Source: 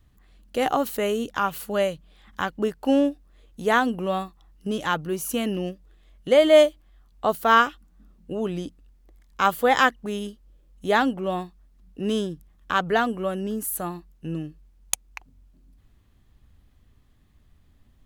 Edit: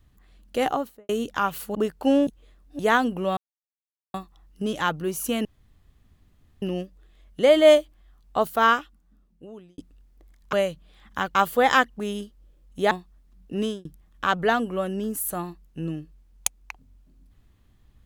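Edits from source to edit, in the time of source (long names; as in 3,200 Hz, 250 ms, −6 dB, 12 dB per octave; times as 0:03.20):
0:00.59–0:01.09: fade out and dull
0:01.75–0:02.57: move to 0:09.41
0:03.09–0:03.61: reverse
0:04.19: splice in silence 0.77 s
0:05.50: splice in room tone 1.17 s
0:07.27–0:08.66: fade out
0:10.97–0:11.38: remove
0:12.07–0:12.32: fade out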